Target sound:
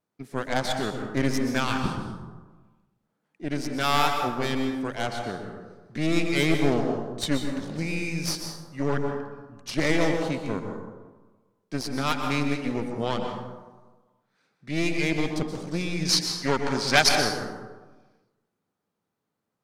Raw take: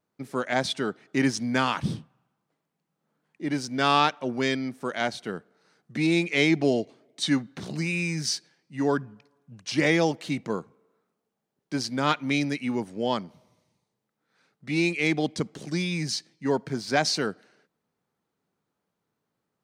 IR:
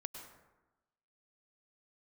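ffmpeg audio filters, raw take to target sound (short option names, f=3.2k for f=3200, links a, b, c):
-filter_complex "[0:a]aeval=exprs='0.501*(cos(1*acos(clip(val(0)/0.501,-1,1)))-cos(1*PI/2))+0.0708*(cos(8*acos(clip(val(0)/0.501,-1,1)))-cos(8*PI/2))':c=same,asettb=1/sr,asplit=3[a][b][c];[a]atrim=end=16.054[d];[b]atrim=start=16.05:end=17.09,asetpts=PTS-STARTPTS,afade=t=in:d=0.004:c=qsin,afade=t=out:st=1.036:d=0.004:c=qsin,equalizer=f=3.7k:w=0.32:g=12[e];[c]atrim=start=17.086[f];[d][e]acrossfade=d=0.004:c1=hsin:c2=qsin[g];[g][f]acrossfade=d=0.004:c1=qsin:c2=hsin[h];[1:a]atrim=start_sample=2205,asetrate=36162,aresample=44100[i];[h][i]afir=irnorm=-1:irlink=0"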